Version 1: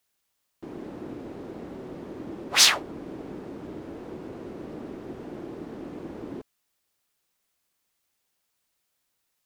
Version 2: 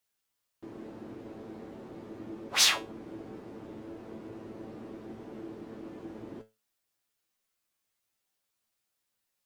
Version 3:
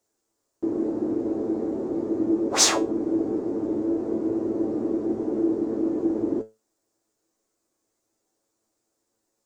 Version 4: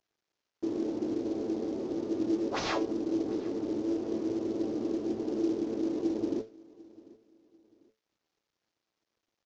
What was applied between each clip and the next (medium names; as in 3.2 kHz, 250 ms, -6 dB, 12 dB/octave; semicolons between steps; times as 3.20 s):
feedback comb 110 Hz, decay 0.24 s, harmonics all, mix 80%; trim +1.5 dB
FFT filter 190 Hz 0 dB, 310 Hz +13 dB, 3 kHz -13 dB, 7.2 kHz +2 dB, 11 kHz -11 dB; trim +8.5 dB
CVSD coder 32 kbps; feedback delay 745 ms, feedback 34%, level -22.5 dB; trim -6 dB